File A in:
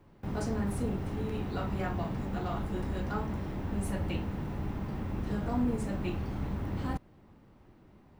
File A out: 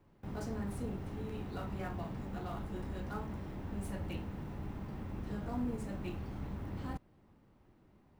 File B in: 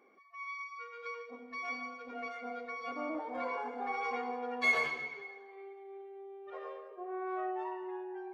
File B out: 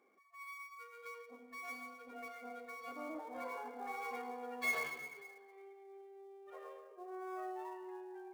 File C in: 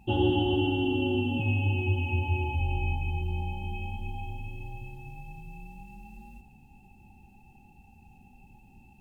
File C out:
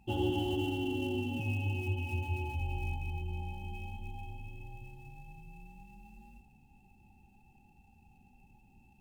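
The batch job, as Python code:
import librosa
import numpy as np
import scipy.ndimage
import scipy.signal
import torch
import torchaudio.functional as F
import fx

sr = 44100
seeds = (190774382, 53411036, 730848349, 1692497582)

y = fx.dead_time(x, sr, dead_ms=0.055)
y = y * librosa.db_to_amplitude(-7.0)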